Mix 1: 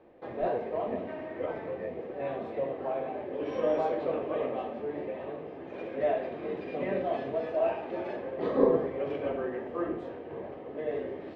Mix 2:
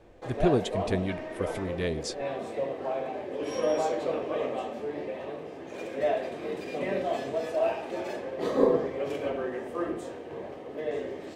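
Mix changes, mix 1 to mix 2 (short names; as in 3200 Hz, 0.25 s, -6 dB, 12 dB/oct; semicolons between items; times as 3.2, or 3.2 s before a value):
speech: remove vocal tract filter e; master: remove air absorption 350 m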